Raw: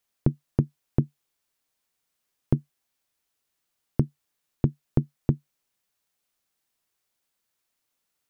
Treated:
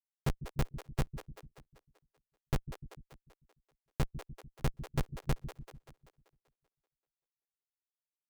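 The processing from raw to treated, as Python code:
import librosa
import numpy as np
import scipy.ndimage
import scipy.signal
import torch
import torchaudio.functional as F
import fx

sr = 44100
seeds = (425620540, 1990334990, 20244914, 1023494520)

y = fx.schmitt(x, sr, flips_db=-26.5)
y = fx.echo_split(y, sr, split_hz=340.0, low_ms=148, high_ms=193, feedback_pct=52, wet_db=-9)
y = fx.dereverb_blind(y, sr, rt60_s=0.74)
y = F.gain(torch.from_numpy(y), 5.0).numpy()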